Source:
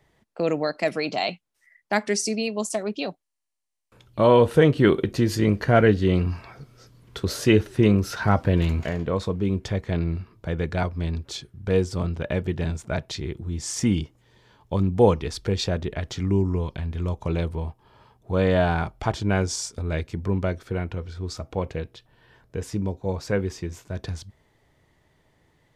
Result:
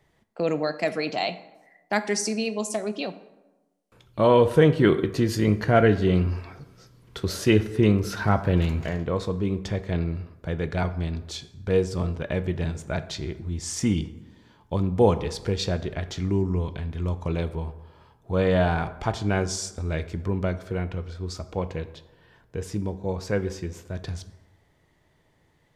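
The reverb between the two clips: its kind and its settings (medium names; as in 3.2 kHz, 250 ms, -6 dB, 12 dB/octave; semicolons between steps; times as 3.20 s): plate-style reverb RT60 1.1 s, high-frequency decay 0.55×, DRR 11.5 dB; trim -1.5 dB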